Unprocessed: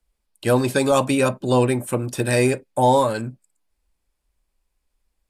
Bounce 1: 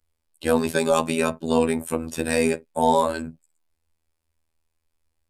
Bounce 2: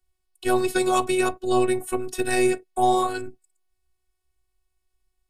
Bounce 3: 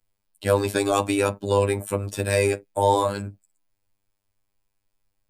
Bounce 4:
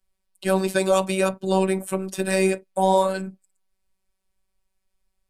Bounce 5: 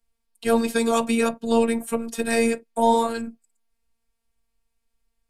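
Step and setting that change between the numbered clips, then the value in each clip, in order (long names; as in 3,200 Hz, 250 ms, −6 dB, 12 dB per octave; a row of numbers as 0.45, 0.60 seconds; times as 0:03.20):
phases set to zero, frequency: 81, 370, 100, 190, 230 Hertz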